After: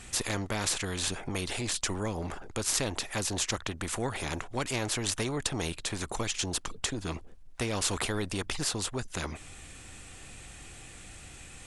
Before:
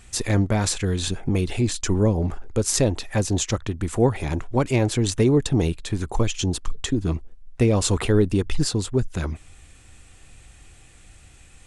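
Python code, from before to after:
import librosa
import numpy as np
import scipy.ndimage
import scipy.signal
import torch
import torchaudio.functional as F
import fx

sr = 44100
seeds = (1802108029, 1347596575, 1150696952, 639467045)

y = fx.spectral_comp(x, sr, ratio=2.0)
y = F.gain(torch.from_numpy(y), -5.5).numpy()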